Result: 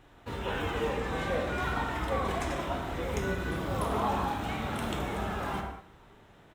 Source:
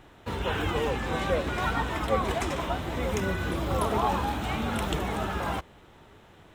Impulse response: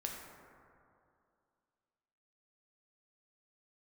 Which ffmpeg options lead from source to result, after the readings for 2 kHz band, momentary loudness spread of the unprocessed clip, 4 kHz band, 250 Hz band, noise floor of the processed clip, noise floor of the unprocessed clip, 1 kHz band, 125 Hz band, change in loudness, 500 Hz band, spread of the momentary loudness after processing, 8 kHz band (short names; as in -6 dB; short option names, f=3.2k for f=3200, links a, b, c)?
-2.5 dB, 4 LU, -4.5 dB, -3.5 dB, -57 dBFS, -54 dBFS, -3.0 dB, -4.0 dB, -3.5 dB, -3.5 dB, 5 LU, -4.5 dB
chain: -filter_complex "[0:a]aecho=1:1:116|232|348|464|580:0.0841|0.0505|0.0303|0.0182|0.0109[a];[1:a]atrim=start_sample=2205,afade=t=out:st=0.26:d=0.01,atrim=end_sample=11907[b];[a][b]afir=irnorm=-1:irlink=0,volume=-3dB"